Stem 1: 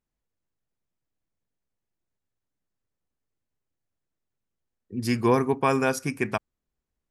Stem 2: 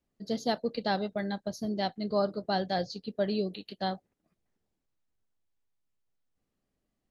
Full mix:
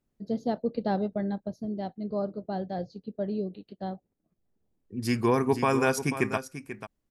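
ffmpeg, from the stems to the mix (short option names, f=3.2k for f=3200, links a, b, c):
-filter_complex "[0:a]alimiter=limit=-13.5dB:level=0:latency=1:release=272,volume=1dB,asplit=2[a][b];[b]volume=-11.5dB[c];[1:a]tiltshelf=f=1.2k:g=9.5,dynaudnorm=f=200:g=11:m=8dB,volume=1dB,afade=t=out:st=0.84:d=0.76:silence=0.316228,afade=t=in:st=4.29:d=0.68:silence=0.446684,asplit=2[d][e];[e]apad=whole_len=317941[f];[a][f]sidechaincompress=threshold=-49dB:ratio=8:attack=12:release=1090[g];[c]aecho=0:1:489:1[h];[g][d][h]amix=inputs=3:normalize=0"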